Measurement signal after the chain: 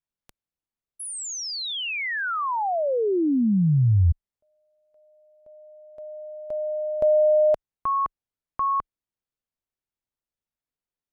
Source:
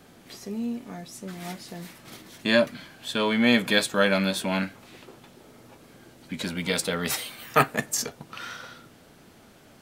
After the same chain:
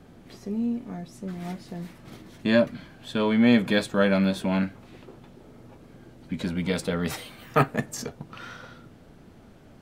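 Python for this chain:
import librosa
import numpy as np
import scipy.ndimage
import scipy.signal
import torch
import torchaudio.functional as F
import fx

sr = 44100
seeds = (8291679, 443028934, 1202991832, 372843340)

y = fx.tilt_eq(x, sr, slope=-2.5)
y = F.gain(torch.from_numpy(y), -2.0).numpy()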